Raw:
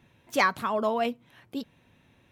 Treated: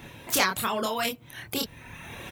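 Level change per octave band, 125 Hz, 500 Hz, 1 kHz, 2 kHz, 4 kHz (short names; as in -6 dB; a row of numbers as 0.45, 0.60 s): +5.5, -3.0, -2.0, +0.5, +8.5 dB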